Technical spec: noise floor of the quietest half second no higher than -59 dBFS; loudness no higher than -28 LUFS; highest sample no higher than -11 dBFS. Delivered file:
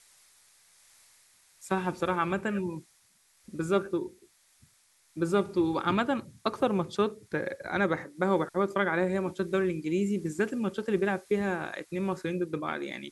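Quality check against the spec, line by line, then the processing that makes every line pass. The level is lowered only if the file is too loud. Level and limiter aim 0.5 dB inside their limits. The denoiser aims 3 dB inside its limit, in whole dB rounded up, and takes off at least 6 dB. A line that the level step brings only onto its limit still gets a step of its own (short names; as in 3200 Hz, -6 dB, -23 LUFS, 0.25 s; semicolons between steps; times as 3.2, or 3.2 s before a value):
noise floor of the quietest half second -65 dBFS: OK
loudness -30.0 LUFS: OK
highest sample -12.5 dBFS: OK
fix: none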